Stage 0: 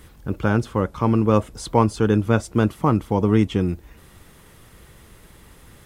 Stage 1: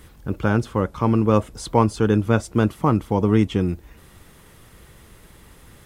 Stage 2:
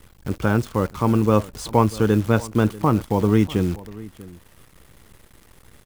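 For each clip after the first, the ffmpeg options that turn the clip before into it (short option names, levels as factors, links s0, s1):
-af anull
-filter_complex "[0:a]acrusher=bits=7:dc=4:mix=0:aa=0.000001,asplit=2[s0][s1];[s1]adelay=641.4,volume=0.112,highshelf=f=4000:g=-14.4[s2];[s0][s2]amix=inputs=2:normalize=0"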